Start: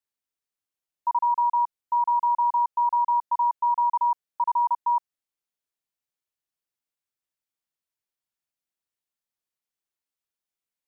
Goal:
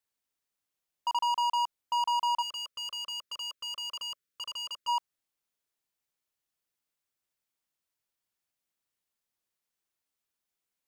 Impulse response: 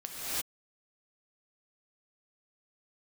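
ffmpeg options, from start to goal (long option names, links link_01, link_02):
-filter_complex "[0:a]volume=29.5dB,asoftclip=hard,volume=-29.5dB,asplit=3[link_01][link_02][link_03];[link_01]afade=type=out:start_time=2.41:duration=0.02[link_04];[link_02]asuperstop=centerf=820:order=8:qfactor=1.5,afade=type=in:start_time=2.41:duration=0.02,afade=type=out:start_time=4.87:duration=0.02[link_05];[link_03]afade=type=in:start_time=4.87:duration=0.02[link_06];[link_04][link_05][link_06]amix=inputs=3:normalize=0,volume=3dB"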